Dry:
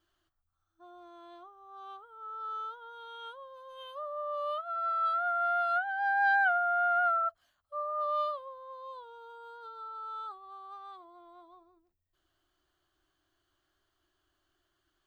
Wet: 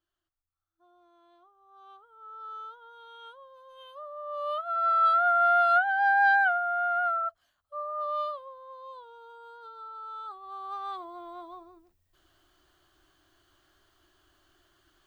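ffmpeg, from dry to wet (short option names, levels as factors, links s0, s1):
-af "volume=8.91,afade=t=in:st=1.37:d=1:silence=0.446684,afade=t=in:st=4.22:d=0.73:silence=0.298538,afade=t=out:st=5.93:d=0.68:silence=0.421697,afade=t=in:st=10.24:d=0.68:silence=0.266073"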